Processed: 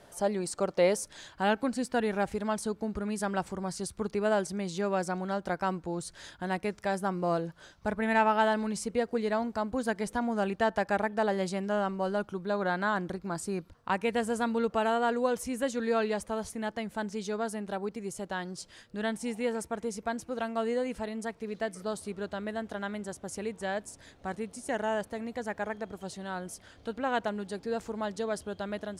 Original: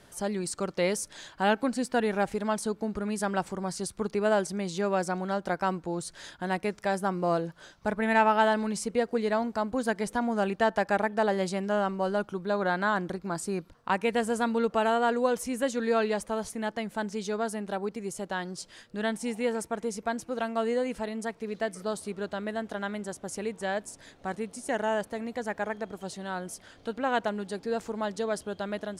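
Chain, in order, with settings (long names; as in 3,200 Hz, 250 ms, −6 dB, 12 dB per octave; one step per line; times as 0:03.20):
parametric band 650 Hz +8 dB 1.2 octaves, from 0:01.06 70 Hz
level −2.5 dB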